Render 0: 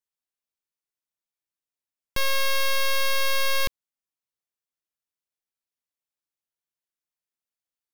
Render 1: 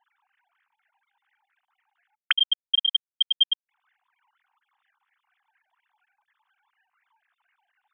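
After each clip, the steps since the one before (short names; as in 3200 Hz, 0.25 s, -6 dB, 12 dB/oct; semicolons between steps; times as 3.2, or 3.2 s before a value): sine-wave speech; LFO bell 4.2 Hz 880–1900 Hz +17 dB; gain -7.5 dB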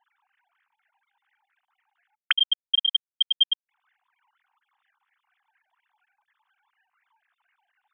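nothing audible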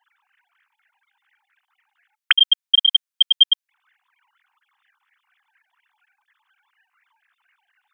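HPF 1200 Hz 12 dB/oct; gain +7.5 dB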